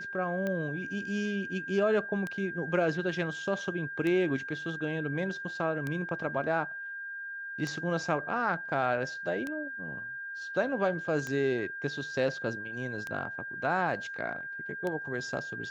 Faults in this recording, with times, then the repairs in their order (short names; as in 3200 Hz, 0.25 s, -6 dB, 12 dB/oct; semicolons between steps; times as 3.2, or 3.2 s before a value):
tick 33 1/3 rpm -21 dBFS
tone 1600 Hz -37 dBFS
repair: de-click; notch 1600 Hz, Q 30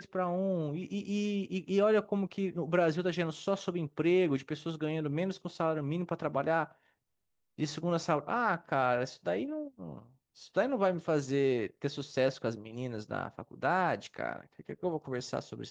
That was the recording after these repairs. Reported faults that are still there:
none